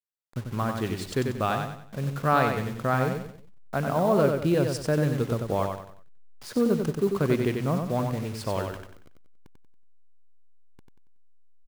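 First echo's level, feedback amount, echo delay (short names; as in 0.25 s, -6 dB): -5.0 dB, 36%, 93 ms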